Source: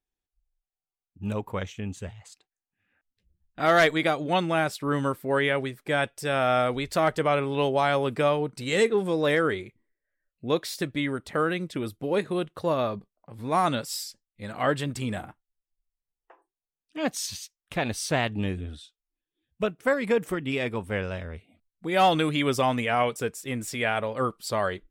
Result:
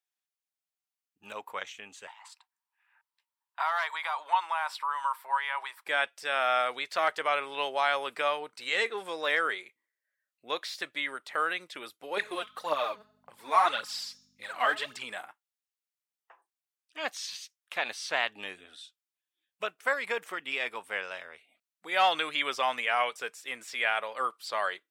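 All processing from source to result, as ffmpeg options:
-filter_complex "[0:a]asettb=1/sr,asplit=3[a][b][c];[a]atrim=end=2.074[d];[b]atrim=start=2.07:end=5.86,asetpts=PTS-STARTPTS,afade=t=in:d=0.004:c=qsin,afade=t=out:st=3.786:d=0.004:c=qsin,bandreject=f=6.5k:w=8,acompressor=threshold=-28dB:ratio=12:attack=3.2:release=140:knee=1:detection=peak,highpass=f=950:t=q:w=9.6[e];[c]atrim=start=5.856[f];[d][e]acrossfade=d=0.004:c1=hsin:c2=qsin[g];[g][f]acrossfade=d=0.004:c1=qsin:c2=hsin,asettb=1/sr,asplit=3[h][i][j];[h]atrim=end=12.174[k];[i]atrim=start=12.17:end=15.03,asetpts=PTS-STARTPTS,afade=t=in:d=0.004:c=qsin,afade=t=out:st=2.856:d=0.004:c=qsin,bandreject=f=211.1:t=h:w=4,bandreject=f=422.2:t=h:w=4,bandreject=f=633.3:t=h:w=4,bandreject=f=844.4:t=h:w=4,bandreject=f=1.0555k:t=h:w=4,bandreject=f=1.2666k:t=h:w=4,bandreject=f=1.4777k:t=h:w=4,bandreject=f=1.6888k:t=h:w=4,bandreject=f=1.8999k:t=h:w=4,bandreject=f=2.111k:t=h:w=4,bandreject=f=2.3221k:t=h:w=4,bandreject=f=2.5332k:t=h:w=4,bandreject=f=2.7443k:t=h:w=4,bandreject=f=2.9554k:t=h:w=4,bandreject=f=3.1665k:t=h:w=4,bandreject=f=3.3776k:t=h:w=4,bandreject=f=3.5887k:t=h:w=4,bandreject=f=3.7998k:t=h:w=4,bandreject=f=4.0109k:t=h:w=4,bandreject=f=4.222k:t=h:w=4,bandreject=f=4.4331k:t=h:w=4,bandreject=f=4.6442k:t=h:w=4,bandreject=f=4.8553k:t=h:w=4,bandreject=f=5.0664k:t=h:w=4,bandreject=f=5.2775k:t=h:w=4,bandreject=f=5.4886k:t=h:w=4,bandreject=f=5.6997k:t=h:w=4,bandreject=f=5.9108k:t=h:w=4,bandreject=f=6.1219k:t=h:w=4,bandreject=f=6.333k:t=h:w=4,bandreject=f=6.5441k:t=h:w=4,bandreject=f=6.7552k:t=h:w=4,bandreject=f=6.9663k:t=h:w=4,aphaser=in_gain=1:out_gain=1:delay=4.8:decay=0.63:speed=1.8:type=triangular,aeval=exprs='val(0)+0.0141*(sin(2*PI*50*n/s)+sin(2*PI*2*50*n/s)/2+sin(2*PI*3*50*n/s)/3+sin(2*PI*4*50*n/s)/4+sin(2*PI*5*50*n/s)/5)':c=same[l];[j]atrim=start=15.026[m];[k][l]acrossfade=d=0.004:c1=hsin:c2=qsin[n];[n][m]acrossfade=d=0.004:c1=qsin:c2=hsin,acrossover=split=5000[o][p];[p]acompressor=threshold=-52dB:ratio=4:attack=1:release=60[q];[o][q]amix=inputs=2:normalize=0,highpass=940,volume=1dB"

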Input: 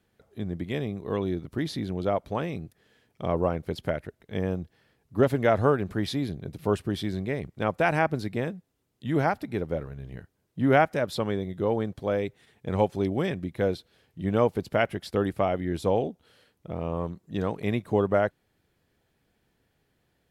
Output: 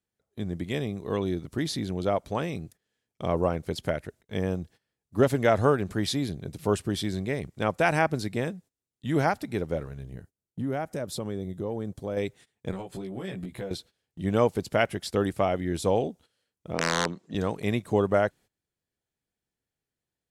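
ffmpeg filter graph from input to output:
-filter_complex "[0:a]asettb=1/sr,asplit=3[a][b][c];[a]atrim=end=10.034[d];[b]atrim=start=10.03:end=12.17,asetpts=PTS-STARTPTS,afade=t=in:d=0.004:c=qsin,afade=t=out:st=2.136:d=0.004:c=qsin,equalizer=f=2.5k:w=0.37:g=-8.5,acompressor=threshold=-28dB:ratio=3:attack=3.2:release=140:knee=1:detection=peak[e];[c]atrim=start=12.166[f];[d][e]acrossfade=d=0.004:c1=hsin:c2=qsin[g];[g][f]acrossfade=d=0.004:c1=qsin:c2=hsin,asettb=1/sr,asplit=3[h][i][j];[h]atrim=end=12.714[k];[i]atrim=start=12.71:end=13.71,asetpts=PTS-STARTPTS,afade=t=in:d=0.004:c=qsin,afade=t=out:st=0.996:d=0.004:c=qsin,equalizer=f=5.8k:t=o:w=0.25:g=-12.5,acompressor=threshold=-33dB:ratio=10:attack=3.2:release=140:knee=1:detection=peak,asplit=2[l][m];[m]adelay=16,volume=-2.5dB[n];[l][n]amix=inputs=2:normalize=0,atrim=end_sample=44100[o];[j]atrim=start=13.706[p];[k][o]acrossfade=d=0.004:c1=hsin:c2=qsin[q];[q][p]acrossfade=d=0.004:c1=qsin:c2=hsin,asettb=1/sr,asplit=3[r][s][t];[r]atrim=end=16.744[u];[s]atrim=start=16.74:end=17.35,asetpts=PTS-STARTPTS,afade=t=in:d=0.004:c=qsin,afade=t=out:st=0.606:d=0.004:c=qsin,acontrast=61,aeval=exprs='(mod(5.62*val(0)+1,2)-1)/5.62':c=same,highpass=220,lowpass=4.8k[v];[t]atrim=start=17.346[w];[u][v]acrossfade=d=0.004:c1=hsin:c2=qsin[x];[x][w]acrossfade=d=0.004:c1=qsin:c2=hsin,agate=range=-19dB:threshold=-49dB:ratio=16:detection=peak,equalizer=f=7.7k:w=0.77:g=10"

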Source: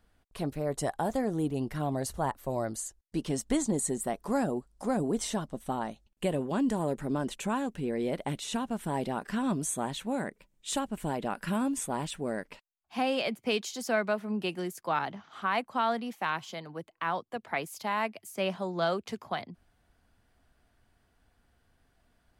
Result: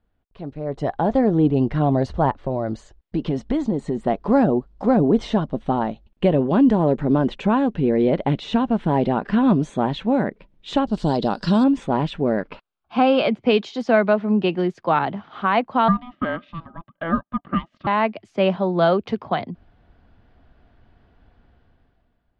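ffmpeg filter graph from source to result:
-filter_complex "[0:a]asettb=1/sr,asplit=3[a][b][c];[a]atrim=end=2.304[d];[b]atrim=start=2.3:end=4.03,asetpts=PTS-STARTPTS,afade=t=in:d=0.004:c=qsin,afade=t=out:st=1.726:d=0.004:c=qsin,highshelf=f=8.5k:g=-5.5,acompressor=threshold=-32dB:ratio=3:attack=3.2:release=140:knee=1:detection=peak[e];[c]atrim=start=4.026[f];[d][e]acrossfade=d=0.004:c1=hsin:c2=qsin[g];[g][f]acrossfade=d=0.004:c1=qsin:c2=hsin,asettb=1/sr,asplit=3[h][i][j];[h]atrim=end=10.874[k];[i]atrim=start=10.87:end=11.64,asetpts=PTS-STARTPTS,afade=t=in:d=0.004:c=qsin,afade=t=out:st=0.766:d=0.004:c=qsin,highshelf=f=3.3k:t=q:w=3:g=12.5,acompressor=mode=upward:threshold=-44dB:ratio=2.5:attack=3.2:release=140:knee=2.83:detection=peak[l];[j]atrim=start=11.636[m];[k][l]acrossfade=d=0.004:c1=hsin:c2=qsin[n];[n][m]acrossfade=d=0.004:c1=qsin:c2=hsin,asettb=1/sr,asplit=3[o][p][q];[o]atrim=end=12.404[r];[p]atrim=start=12.4:end=13.27,asetpts=PTS-STARTPTS,afade=t=in:d=0.004:c=qsin,afade=t=out:st=0.866:d=0.004:c=qsin,equalizer=f=1.3k:t=o:w=0.57:g=7,bandreject=f=1.9k:w=7[s];[q]atrim=start=13.266[t];[r][s]acrossfade=d=0.004:c1=hsin:c2=qsin[u];[u][t]acrossfade=d=0.004:c1=qsin:c2=hsin,asettb=1/sr,asplit=3[v][w][x];[v]atrim=end=15.884[y];[w]atrim=start=15.88:end=17.87,asetpts=PTS-STARTPTS,afade=t=in:d=0.004:c=qsin,afade=t=out:st=1.986:d=0.004:c=qsin,acontrast=83,asplit=3[z][aa][ab];[z]bandpass=f=730:t=q:w=8,volume=0dB[ac];[aa]bandpass=f=1.09k:t=q:w=8,volume=-6dB[ad];[ab]bandpass=f=2.44k:t=q:w=8,volume=-9dB[ae];[ac][ad][ae]amix=inputs=3:normalize=0,aeval=exprs='val(0)*sin(2*PI*500*n/s)':c=same[af];[x]atrim=start=17.866[ag];[y][af]acrossfade=d=0.004:c1=hsin:c2=qsin[ah];[ah][ag]acrossfade=d=0.004:c1=qsin:c2=hsin,lowpass=f=3.6k:w=0.5412,lowpass=f=3.6k:w=1.3066,equalizer=f=2.2k:t=o:w=2.4:g=-7,dynaudnorm=f=130:g=13:m=16.5dB,volume=-2dB"

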